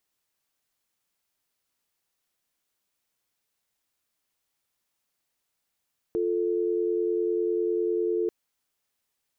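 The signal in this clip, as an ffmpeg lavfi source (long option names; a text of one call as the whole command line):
ffmpeg -f lavfi -i "aevalsrc='0.0501*(sin(2*PI*350*t)+sin(2*PI*440*t))':duration=2.14:sample_rate=44100" out.wav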